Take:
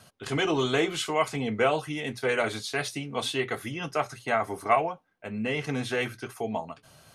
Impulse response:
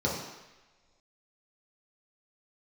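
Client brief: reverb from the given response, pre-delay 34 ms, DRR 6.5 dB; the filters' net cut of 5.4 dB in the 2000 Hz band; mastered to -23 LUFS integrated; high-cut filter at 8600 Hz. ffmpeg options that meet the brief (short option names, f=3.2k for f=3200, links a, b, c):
-filter_complex "[0:a]lowpass=8.6k,equalizer=f=2k:t=o:g=-7,asplit=2[a][b];[1:a]atrim=start_sample=2205,adelay=34[c];[b][c]afir=irnorm=-1:irlink=0,volume=-16.5dB[d];[a][d]amix=inputs=2:normalize=0,volume=5.5dB"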